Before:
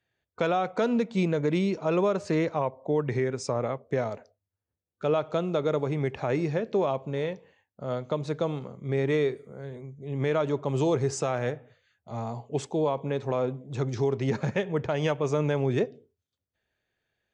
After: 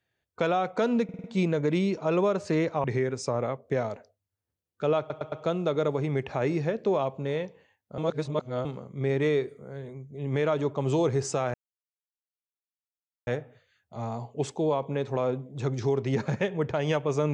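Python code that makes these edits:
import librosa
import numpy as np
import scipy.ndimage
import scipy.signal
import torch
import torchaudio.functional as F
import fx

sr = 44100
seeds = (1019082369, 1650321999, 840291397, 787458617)

y = fx.edit(x, sr, fx.stutter(start_s=1.04, slice_s=0.05, count=5),
    fx.cut(start_s=2.64, length_s=0.41),
    fx.stutter(start_s=5.2, slice_s=0.11, count=4),
    fx.reverse_span(start_s=7.86, length_s=0.67),
    fx.insert_silence(at_s=11.42, length_s=1.73), tone=tone)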